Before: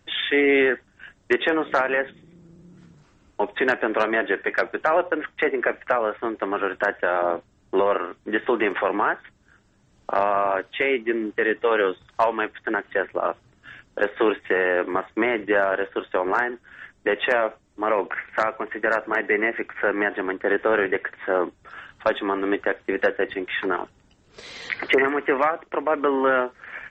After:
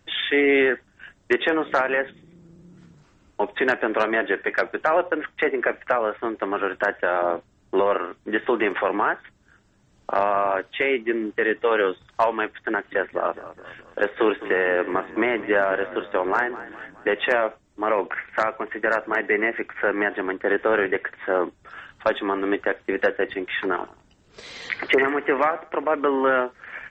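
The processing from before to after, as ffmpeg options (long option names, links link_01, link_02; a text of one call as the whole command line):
ffmpeg -i in.wav -filter_complex "[0:a]asettb=1/sr,asplit=3[link_01][link_02][link_03];[link_01]atrim=end=12.714[link_04];[link_02]atrim=start=12.71:end=17.38,asetpts=PTS-STARTPTS,afade=type=in:duration=0.004:curve=qsin,afade=type=out:start_time=4.666:duration=0.004:curve=qsin,asplit=6[link_05][link_06][link_07][link_08][link_09][link_10];[link_06]adelay=209,afreqshift=-36,volume=-15.5dB[link_11];[link_07]adelay=418,afreqshift=-72,volume=-21.3dB[link_12];[link_08]adelay=627,afreqshift=-108,volume=-27.2dB[link_13];[link_09]adelay=836,afreqshift=-144,volume=-33dB[link_14];[link_10]adelay=1045,afreqshift=-180,volume=-38.9dB[link_15];[link_05][link_11][link_12][link_13][link_14][link_15]amix=inputs=6:normalize=0,atrim=end_sample=205947[link_16];[link_03]atrim=start=17.376[link_17];[link_04][link_16]acrossfade=duration=0.004:curve1=hsin:curve2=qsin[link_18];[link_18][link_17]acrossfade=duration=0.004:curve1=qsin:curve2=hsin,asettb=1/sr,asplit=3[link_19][link_20][link_21];[link_19]atrim=end=23.744[link_22];[link_20]atrim=start=23.74:end=25.87,asetpts=PTS-STARTPTS,afade=type=in:duration=0.004:curve=qsin,afade=type=out:start_time=2.126:duration=0.004:curve=qsin,aecho=1:1:91|182:0.133|0.0347,atrim=end_sample=93933[link_23];[link_21]atrim=start=25.866[link_24];[link_22][link_23]acrossfade=duration=0.004:curve1=hsin:curve2=qsin[link_25];[link_25][link_24]acrossfade=duration=0.004:curve1=qsin:curve2=hsin" out.wav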